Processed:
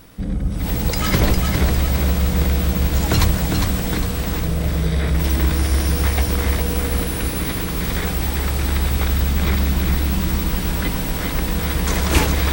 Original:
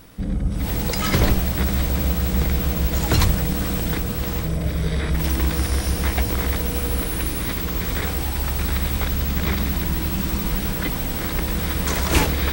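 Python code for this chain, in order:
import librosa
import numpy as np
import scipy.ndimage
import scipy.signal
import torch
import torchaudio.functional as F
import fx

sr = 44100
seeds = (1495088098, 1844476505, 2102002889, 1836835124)

y = fx.echo_feedback(x, sr, ms=405, feedback_pct=42, wet_db=-5.0)
y = y * librosa.db_to_amplitude(1.0)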